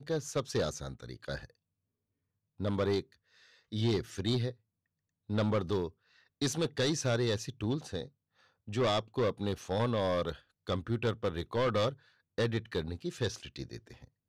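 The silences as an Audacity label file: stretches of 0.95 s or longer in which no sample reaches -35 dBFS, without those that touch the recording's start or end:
1.450000	2.610000	silence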